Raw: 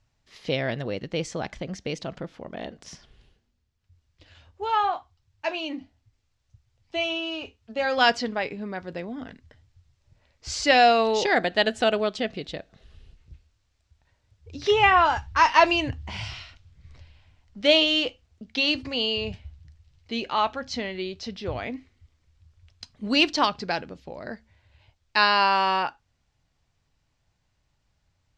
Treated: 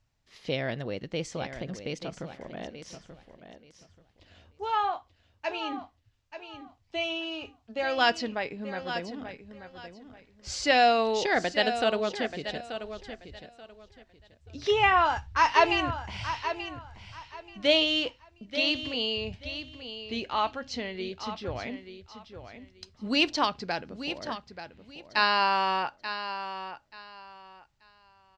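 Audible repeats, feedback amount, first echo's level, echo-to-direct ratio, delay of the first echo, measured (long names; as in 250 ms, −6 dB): 2, 23%, −10.5 dB, −10.5 dB, 883 ms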